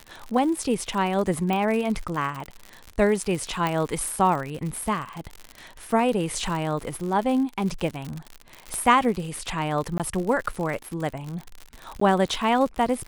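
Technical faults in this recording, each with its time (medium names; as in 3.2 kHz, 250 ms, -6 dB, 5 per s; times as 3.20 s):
crackle 79 per s -29 dBFS
1.53 s: pop
3.67 s: pop -12 dBFS
8.74 s: pop -17 dBFS
9.98–10.00 s: dropout 17 ms
12.00–12.01 s: dropout 14 ms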